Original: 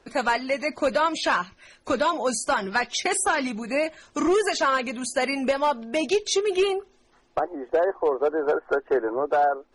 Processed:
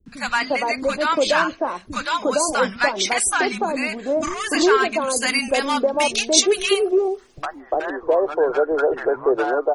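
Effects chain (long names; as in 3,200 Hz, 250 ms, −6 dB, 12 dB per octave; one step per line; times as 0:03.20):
0:05.10–0:07.55: high-shelf EQ 4,300 Hz +10.5 dB
three-band delay without the direct sound lows, highs, mids 60/350 ms, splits 230/920 Hz
level +5.5 dB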